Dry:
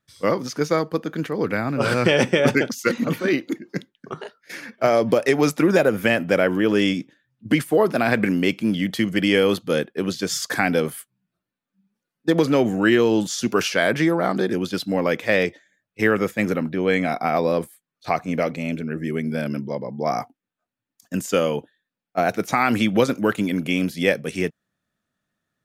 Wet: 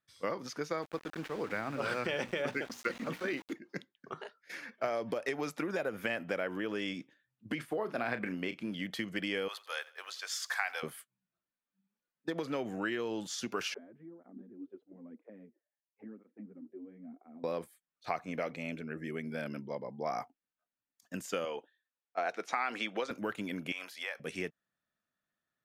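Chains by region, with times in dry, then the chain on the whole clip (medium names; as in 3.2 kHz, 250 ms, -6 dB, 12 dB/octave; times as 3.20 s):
0.82–3.53 s: hum notches 60/120/180/240/300 Hz + small samples zeroed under -32.5 dBFS + treble shelf 9.5 kHz -5 dB
7.55–8.72 s: treble shelf 4.9 kHz -6 dB + doubling 33 ms -11 dB
9.48–10.83 s: high-pass 770 Hz 24 dB/octave + word length cut 10-bit, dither none + feedback delay 88 ms, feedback 45%, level -20.5 dB
13.74–17.44 s: low-pass 2.8 kHz + auto-wah 240–1100 Hz, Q 8.6, down, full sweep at -18 dBFS + cancelling through-zero flanger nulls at 1 Hz, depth 6.6 ms
21.45–23.11 s: band-pass 380–7200 Hz + band-stop 590 Hz, Q 15
23.72–24.20 s: resonant high-pass 950 Hz, resonance Q 1.8 + compression 4:1, threshold -26 dBFS
whole clip: treble shelf 4.6 kHz -8.5 dB; compression, threshold -20 dBFS; bass shelf 440 Hz -10 dB; trim -6.5 dB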